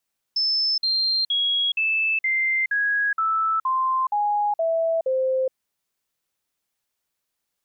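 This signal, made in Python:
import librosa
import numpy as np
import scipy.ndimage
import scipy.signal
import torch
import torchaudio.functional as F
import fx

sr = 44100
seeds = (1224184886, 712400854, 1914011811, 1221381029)

y = fx.stepped_sweep(sr, from_hz=5260.0, direction='down', per_octave=3, tones=11, dwell_s=0.42, gap_s=0.05, level_db=-19.0)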